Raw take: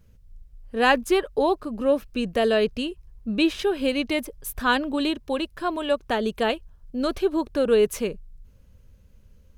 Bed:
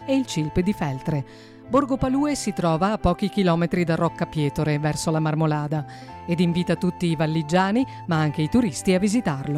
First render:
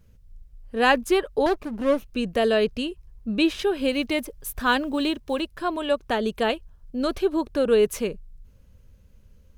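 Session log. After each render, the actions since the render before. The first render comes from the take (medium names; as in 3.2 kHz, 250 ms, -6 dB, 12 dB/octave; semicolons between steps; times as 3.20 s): 1.46–2.12 s: comb filter that takes the minimum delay 0.32 ms; 3.92–5.42 s: block-companded coder 7-bit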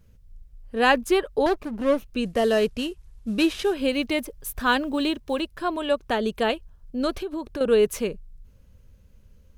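2.25–3.74 s: CVSD coder 64 kbps; 7.10–7.61 s: compression, threshold -27 dBFS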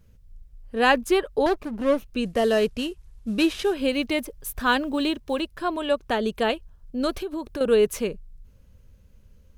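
7.03–7.76 s: treble shelf 8.5 kHz +5.5 dB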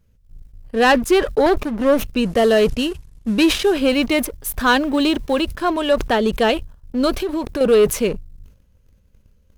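waveshaping leveller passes 2; decay stretcher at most 120 dB/s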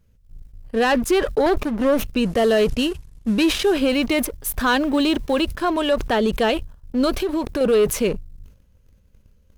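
peak limiter -11.5 dBFS, peak gain reduction 6 dB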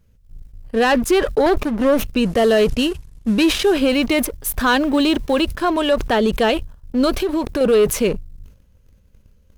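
trim +2.5 dB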